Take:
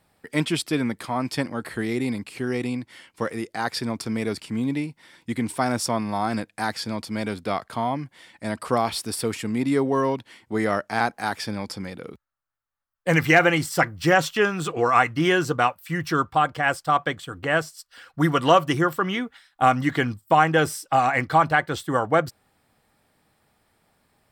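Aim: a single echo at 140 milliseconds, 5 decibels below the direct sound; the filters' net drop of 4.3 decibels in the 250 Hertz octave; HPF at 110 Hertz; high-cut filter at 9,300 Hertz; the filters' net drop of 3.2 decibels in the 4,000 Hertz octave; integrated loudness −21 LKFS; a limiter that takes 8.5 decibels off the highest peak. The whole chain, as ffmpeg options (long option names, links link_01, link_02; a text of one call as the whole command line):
ffmpeg -i in.wav -af "highpass=110,lowpass=9300,equalizer=frequency=250:width_type=o:gain=-5.5,equalizer=frequency=4000:width_type=o:gain=-4.5,alimiter=limit=-12.5dB:level=0:latency=1,aecho=1:1:140:0.562,volume=5.5dB" out.wav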